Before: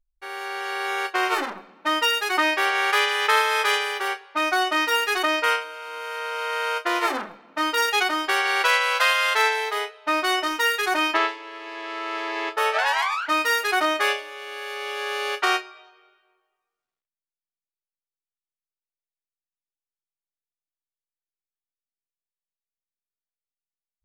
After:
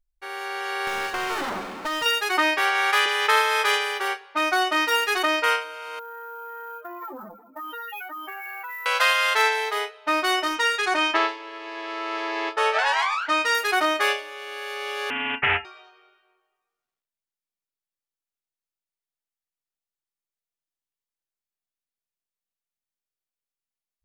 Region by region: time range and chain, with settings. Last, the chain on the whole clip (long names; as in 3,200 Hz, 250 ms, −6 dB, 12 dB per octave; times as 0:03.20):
0:00.87–0:02.06: downward compressor 5 to 1, threshold −30 dBFS + power curve on the samples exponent 0.5
0:02.58–0:03.06: high-pass filter 460 Hz + double-tracking delay 33 ms −12.5 dB
0:05.99–0:08.86: expanding power law on the bin magnitudes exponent 3.5 + downward compressor 5 to 1, threshold −34 dBFS + sample-rate reduction 15,000 Hz
0:10.55–0:13.55: Savitzky-Golay smoothing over 9 samples + double-tracking delay 18 ms −12.5 dB
0:15.10–0:15.65: voice inversion scrambler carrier 3,200 Hz + highs frequency-modulated by the lows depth 0.18 ms
whole clip: no processing